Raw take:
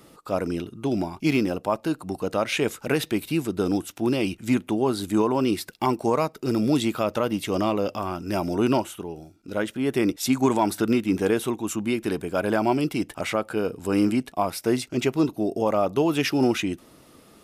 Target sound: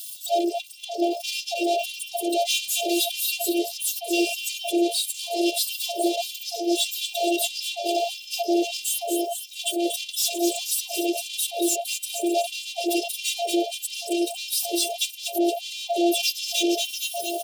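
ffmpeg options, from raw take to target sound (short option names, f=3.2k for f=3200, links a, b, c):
-filter_complex "[0:a]aeval=exprs='val(0)+0.5*0.0168*sgn(val(0))':c=same,aemphasis=mode=production:type=50kf,afftdn=nr=20:nf=-32,adynamicequalizer=threshold=0.0178:dfrequency=130:dqfactor=1.6:tfrequency=130:tqfactor=1.6:attack=5:release=100:ratio=0.375:range=1.5:mode=boostabove:tftype=bell,asplit=2[a][b];[b]asplit=5[c][d][e][f][g];[c]adelay=229,afreqshift=100,volume=-13.5dB[h];[d]adelay=458,afreqshift=200,volume=-19.9dB[i];[e]adelay=687,afreqshift=300,volume=-26.3dB[j];[f]adelay=916,afreqshift=400,volume=-32.6dB[k];[g]adelay=1145,afreqshift=500,volume=-39dB[l];[h][i][j][k][l]amix=inputs=5:normalize=0[m];[a][m]amix=inputs=2:normalize=0,asplit=2[n][o];[o]highpass=f=720:p=1,volume=34dB,asoftclip=type=tanh:threshold=-7dB[p];[n][p]amix=inputs=2:normalize=0,lowpass=f=3.6k:p=1,volume=-6dB,acrossover=split=380[q][r];[q]asoftclip=type=tanh:threshold=-24dB[s];[s][r]amix=inputs=2:normalize=0,afftfilt=real='hypot(re,im)*cos(PI*b)':imag='0':win_size=512:overlap=0.75,asuperstop=centerf=1400:order=12:qfactor=0.66,afftfilt=real='re*gte(b*sr/1024,280*pow(1700/280,0.5+0.5*sin(2*PI*1.6*pts/sr)))':imag='im*gte(b*sr/1024,280*pow(1700/280,0.5+0.5*sin(2*PI*1.6*pts/sr)))':win_size=1024:overlap=0.75"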